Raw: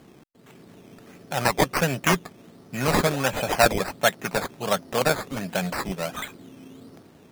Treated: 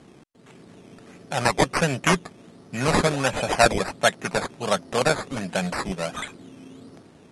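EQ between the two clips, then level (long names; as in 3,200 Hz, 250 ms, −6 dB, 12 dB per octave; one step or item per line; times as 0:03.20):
Butterworth low-pass 11,000 Hz 72 dB per octave
+1.0 dB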